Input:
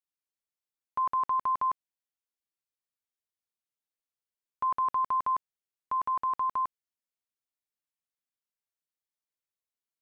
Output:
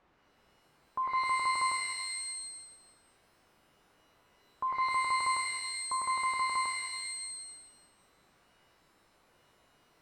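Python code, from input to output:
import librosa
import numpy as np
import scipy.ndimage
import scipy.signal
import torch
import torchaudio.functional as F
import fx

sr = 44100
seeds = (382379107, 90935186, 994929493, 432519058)

y = x + 0.5 * 10.0 ** (-45.5 / 20.0) * np.sign(x)
y = scipy.signal.sosfilt(scipy.signal.butter(2, 1300.0, 'lowpass', fs=sr, output='sos'), y)
y = fx.rev_shimmer(y, sr, seeds[0], rt60_s=1.2, semitones=12, shimmer_db=-2, drr_db=5.0)
y = y * librosa.db_to_amplitude(-3.0)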